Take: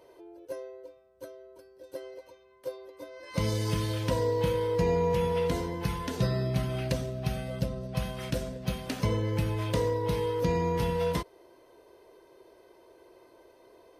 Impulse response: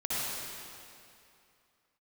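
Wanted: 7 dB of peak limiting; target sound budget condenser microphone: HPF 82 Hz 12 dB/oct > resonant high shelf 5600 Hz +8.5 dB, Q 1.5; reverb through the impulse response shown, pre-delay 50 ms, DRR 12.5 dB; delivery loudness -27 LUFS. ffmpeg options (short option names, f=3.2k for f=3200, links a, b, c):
-filter_complex "[0:a]alimiter=limit=-22.5dB:level=0:latency=1,asplit=2[a][b];[1:a]atrim=start_sample=2205,adelay=50[c];[b][c]afir=irnorm=-1:irlink=0,volume=-20.5dB[d];[a][d]amix=inputs=2:normalize=0,highpass=82,highshelf=f=5.6k:t=q:w=1.5:g=8.5,volume=6dB"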